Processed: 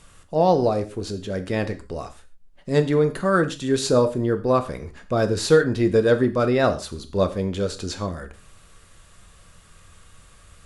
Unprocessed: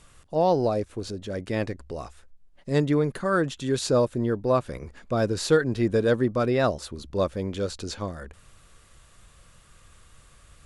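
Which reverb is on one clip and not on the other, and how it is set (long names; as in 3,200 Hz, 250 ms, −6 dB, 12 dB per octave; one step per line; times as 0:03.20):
reverb whose tail is shaped and stops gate 160 ms falling, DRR 8 dB
level +3 dB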